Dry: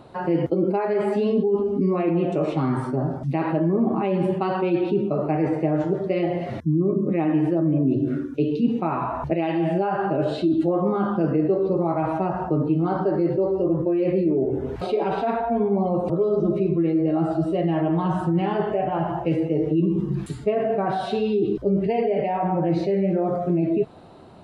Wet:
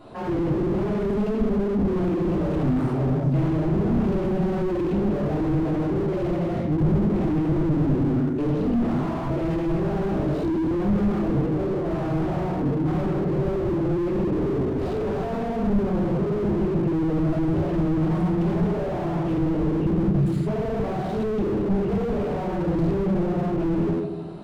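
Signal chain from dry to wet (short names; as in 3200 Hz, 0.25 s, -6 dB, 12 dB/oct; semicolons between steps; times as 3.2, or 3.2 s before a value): 11.38–13.35 negative-ratio compressor -24 dBFS, ratio -0.5; shoebox room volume 300 m³, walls mixed, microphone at 3.1 m; slew limiter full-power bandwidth 48 Hz; gain -5.5 dB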